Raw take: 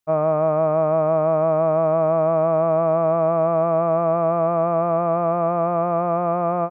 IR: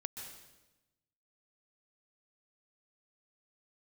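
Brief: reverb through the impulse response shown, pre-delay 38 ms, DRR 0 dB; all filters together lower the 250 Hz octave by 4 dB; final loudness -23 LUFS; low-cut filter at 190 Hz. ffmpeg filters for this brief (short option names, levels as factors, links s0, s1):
-filter_complex "[0:a]highpass=190,equalizer=f=250:t=o:g=-3.5,asplit=2[s0][s1];[1:a]atrim=start_sample=2205,adelay=38[s2];[s1][s2]afir=irnorm=-1:irlink=0,volume=1.19[s3];[s0][s3]amix=inputs=2:normalize=0,volume=0.531"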